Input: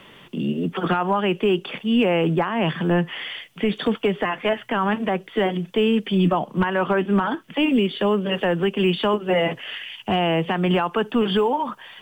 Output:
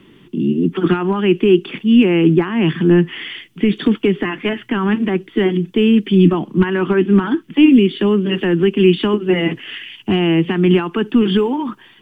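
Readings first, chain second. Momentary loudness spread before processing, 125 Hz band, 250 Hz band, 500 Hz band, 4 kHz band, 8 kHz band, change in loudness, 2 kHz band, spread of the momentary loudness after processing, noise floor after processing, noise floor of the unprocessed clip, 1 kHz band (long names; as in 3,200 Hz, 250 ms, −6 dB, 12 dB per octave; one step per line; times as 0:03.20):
6 LU, +7.5 dB, +9.0 dB, +5.0 dB, +2.5 dB, can't be measured, +6.5 dB, +2.5 dB, 9 LU, −47 dBFS, −48 dBFS, −3.0 dB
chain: dynamic equaliser 2,300 Hz, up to +7 dB, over −38 dBFS, Q 0.73
automatic gain control gain up to 3 dB
low shelf with overshoot 440 Hz +8.5 dB, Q 3
level −5.5 dB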